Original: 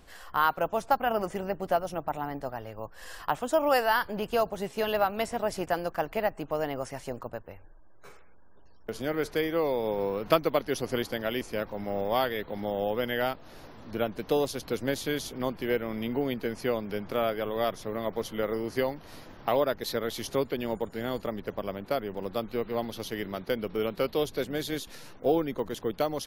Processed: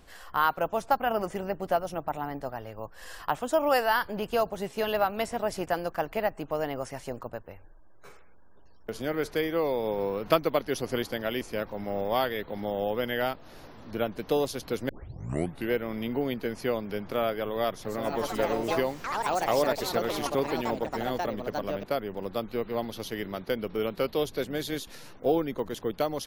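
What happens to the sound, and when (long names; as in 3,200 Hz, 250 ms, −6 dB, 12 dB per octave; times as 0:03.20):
0:14.89: tape start 0.82 s
0:17.70–0:22.72: delay with pitch and tempo change per echo 151 ms, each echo +4 semitones, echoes 3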